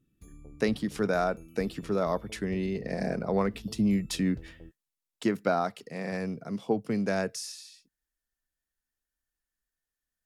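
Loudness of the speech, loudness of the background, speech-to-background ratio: −30.5 LKFS, −50.0 LKFS, 19.5 dB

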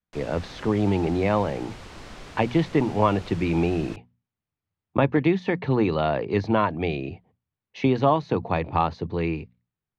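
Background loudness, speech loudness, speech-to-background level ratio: −43.0 LKFS, −24.5 LKFS, 18.5 dB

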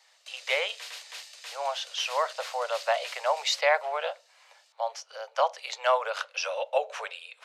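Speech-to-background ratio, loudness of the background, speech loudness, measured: 13.0 dB, −42.5 LKFS, −29.5 LKFS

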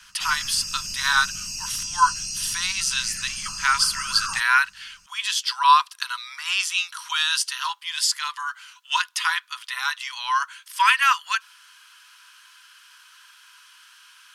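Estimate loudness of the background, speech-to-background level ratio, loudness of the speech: −29.0 LKFS, 6.0 dB, −23.0 LKFS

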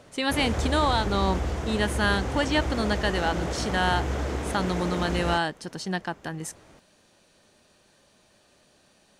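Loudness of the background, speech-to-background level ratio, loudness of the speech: −30.5 LKFS, 3.0 dB, −27.5 LKFS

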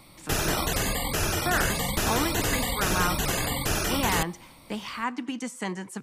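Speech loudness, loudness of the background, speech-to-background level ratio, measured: −32.0 LKFS, −27.0 LKFS, −5.0 dB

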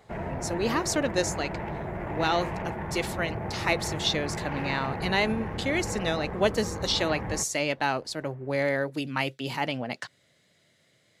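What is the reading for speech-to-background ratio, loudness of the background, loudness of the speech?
5.5 dB, −34.5 LKFS, −29.0 LKFS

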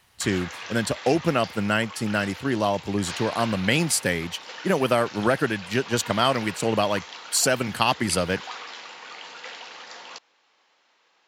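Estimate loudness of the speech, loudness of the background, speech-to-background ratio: −24.5 LKFS, −37.5 LKFS, 13.0 dB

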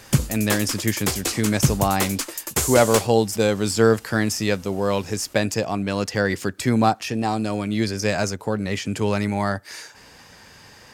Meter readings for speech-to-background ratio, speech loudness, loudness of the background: 2.5 dB, −22.5 LKFS, −25.0 LKFS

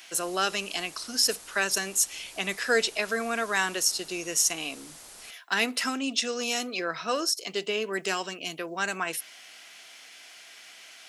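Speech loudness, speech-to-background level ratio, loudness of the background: −27.5 LKFS, 17.5 dB, −45.0 LKFS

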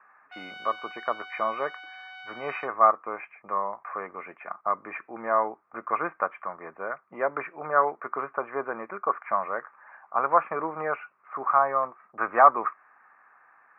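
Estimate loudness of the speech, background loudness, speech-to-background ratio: −27.5 LKFS, −43.0 LKFS, 15.5 dB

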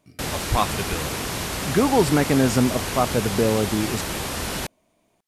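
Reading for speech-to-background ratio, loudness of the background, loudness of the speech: 5.0 dB, −27.5 LKFS, −22.5 LKFS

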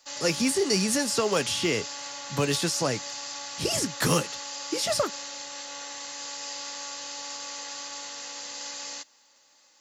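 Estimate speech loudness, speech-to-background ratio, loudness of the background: −26.5 LKFS, 8.5 dB, −35.0 LKFS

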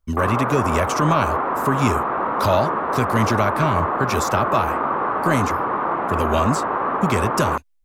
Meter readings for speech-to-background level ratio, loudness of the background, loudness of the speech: −0.5 dB, −22.5 LKFS, −23.0 LKFS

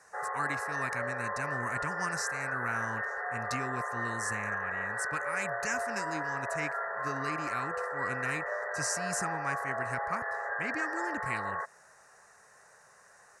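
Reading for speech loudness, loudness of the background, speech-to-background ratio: −38.0 LKFS, −34.5 LKFS, −3.5 dB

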